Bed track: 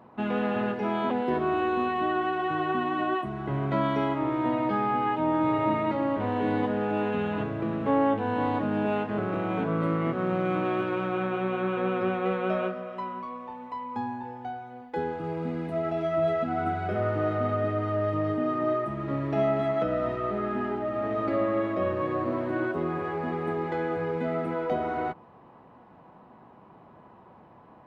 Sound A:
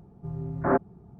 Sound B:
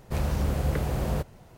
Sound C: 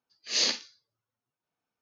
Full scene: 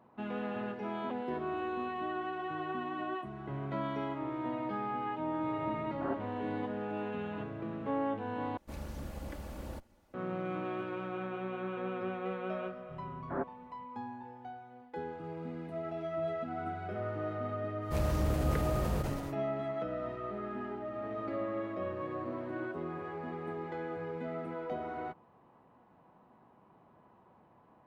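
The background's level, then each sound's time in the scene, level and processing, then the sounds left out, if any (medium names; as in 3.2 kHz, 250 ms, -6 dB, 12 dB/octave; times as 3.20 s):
bed track -10 dB
5.37 s: add A -15 dB
8.57 s: replace with B -13.5 dB + comb filter that takes the minimum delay 3.5 ms
12.66 s: add A -13 dB
17.80 s: add B -5.5 dB, fades 0.10 s + decay stretcher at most 39 dB/s
not used: C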